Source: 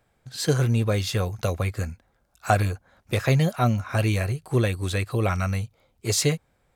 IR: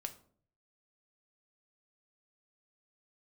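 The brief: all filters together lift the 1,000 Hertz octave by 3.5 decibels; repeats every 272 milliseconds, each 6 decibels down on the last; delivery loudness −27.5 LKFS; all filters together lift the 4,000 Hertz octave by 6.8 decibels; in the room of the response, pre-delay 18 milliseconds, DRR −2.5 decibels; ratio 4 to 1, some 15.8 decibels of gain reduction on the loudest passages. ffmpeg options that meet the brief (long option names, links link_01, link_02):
-filter_complex "[0:a]equalizer=frequency=1000:width_type=o:gain=5,equalizer=frequency=4000:width_type=o:gain=8,acompressor=threshold=-32dB:ratio=4,aecho=1:1:272|544|816|1088|1360|1632:0.501|0.251|0.125|0.0626|0.0313|0.0157,asplit=2[link_01][link_02];[1:a]atrim=start_sample=2205,adelay=18[link_03];[link_02][link_03]afir=irnorm=-1:irlink=0,volume=5dB[link_04];[link_01][link_04]amix=inputs=2:normalize=0,volume=1.5dB"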